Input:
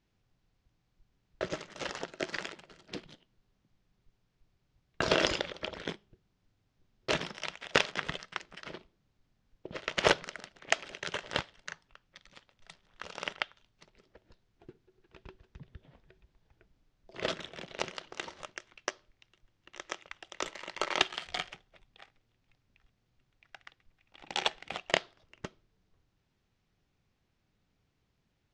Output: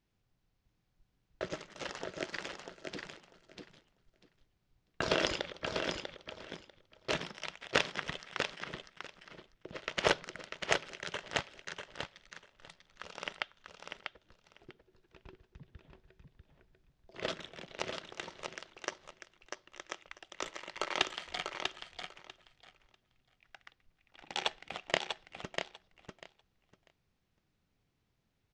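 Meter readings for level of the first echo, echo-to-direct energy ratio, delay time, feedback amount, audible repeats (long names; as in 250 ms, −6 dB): −5.5 dB, −5.5 dB, 644 ms, 16%, 2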